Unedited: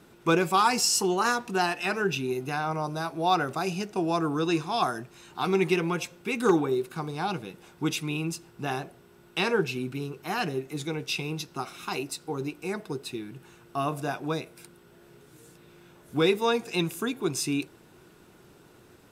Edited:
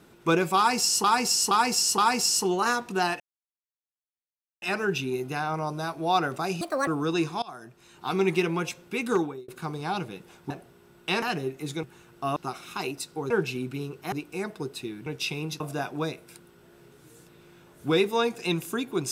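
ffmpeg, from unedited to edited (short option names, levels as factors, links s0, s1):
-filter_complex "[0:a]asplit=17[s0][s1][s2][s3][s4][s5][s6][s7][s8][s9][s10][s11][s12][s13][s14][s15][s16];[s0]atrim=end=1.042[s17];[s1]atrim=start=0.568:end=1.042[s18];[s2]atrim=start=0.568:end=1.042[s19];[s3]atrim=start=0.568:end=1.79,asetpts=PTS-STARTPTS,afade=t=out:st=1.218:d=0.004:c=hsin,apad=pad_dur=1.42[s20];[s4]atrim=start=1.79:end=3.784,asetpts=PTS-STARTPTS,afade=t=in:d=0.004:c=hsin[s21];[s5]atrim=start=3.78:end=4.21,asetpts=PTS-STARTPTS,asetrate=72324,aresample=44100[s22];[s6]atrim=start=4.206:end=4.76,asetpts=PTS-STARTPTS,afade=t=out:st=0.55:d=0.004:c=hsin:silence=0.0668344[s23];[s7]atrim=start=4.76:end=6.82,asetpts=PTS-STARTPTS,afade=t=in:d=0.77:silence=0.0668344,afade=t=out:st=1.61:d=0.45[s24];[s8]atrim=start=6.82:end=7.842,asetpts=PTS-STARTPTS,afade=t=in:d=0.004:c=hsin[s25];[s9]atrim=start=8.788:end=9.512[s26];[s10]atrim=start=10.328:end=10.942[s27];[s11]atrim=start=13.358:end=13.892[s28];[s12]atrim=start=11.478:end=12.422[s29];[s13]atrim=start=9.508:end=10.332[s30];[s14]atrim=start=12.418:end=13.362[s31];[s15]atrim=start=10.938:end=11.482[s32];[s16]atrim=start=13.888[s33];[s17][s18]acrossfade=d=0.004:c1=hsin:c2=hsin[s34];[s34][s19]acrossfade=d=0.004:c1=hsin:c2=hsin[s35];[s20][s21]concat=n=2:v=0:a=1[s36];[s35][s36]acrossfade=d=0.004:c1=hsin:c2=hsin[s37];[s37][s22]acrossfade=d=0.004:c1=hsin:c2=hsin[s38];[s23][s24][s25]concat=n=3:v=0:a=1[s39];[s38][s39]acrossfade=d=0.004:c1=hsin:c2=hsin[s40];[s40][s26]acrossfade=d=0.004:c1=hsin:c2=hsin[s41];[s41][s27]acrossfade=d=0.004:c1=hsin:c2=hsin[s42];[s42][s28]acrossfade=d=0.004:c1=hsin:c2=hsin[s43];[s43][s29]acrossfade=d=0.004:c1=hsin:c2=hsin[s44];[s44][s30]acrossfade=d=0.004:c1=hsin:c2=hsin[s45];[s45][s31]acrossfade=d=0.004:c1=hsin:c2=hsin[s46];[s46][s32]acrossfade=d=0.004:c1=hsin:c2=hsin[s47];[s47][s33]acrossfade=d=0.004:c1=hsin:c2=hsin"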